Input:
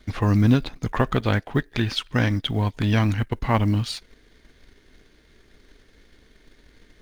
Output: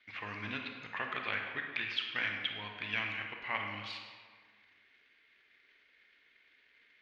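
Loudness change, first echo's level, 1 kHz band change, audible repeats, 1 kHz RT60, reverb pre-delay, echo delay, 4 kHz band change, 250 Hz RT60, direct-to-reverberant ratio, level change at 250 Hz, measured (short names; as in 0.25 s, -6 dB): -14.0 dB, none, -13.0 dB, none, 1.7 s, 30 ms, none, -7.5 dB, 1.6 s, 2.5 dB, -26.0 dB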